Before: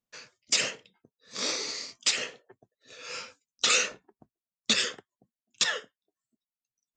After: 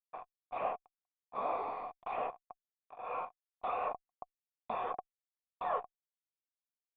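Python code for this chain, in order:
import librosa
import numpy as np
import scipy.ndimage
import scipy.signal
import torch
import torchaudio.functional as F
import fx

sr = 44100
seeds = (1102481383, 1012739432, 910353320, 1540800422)

y = fx.fuzz(x, sr, gain_db=41.0, gate_db=-43.0)
y = fx.power_curve(y, sr, exponent=0.7)
y = fx.formant_cascade(y, sr, vowel='a')
y = y * librosa.db_to_amplitude(1.0)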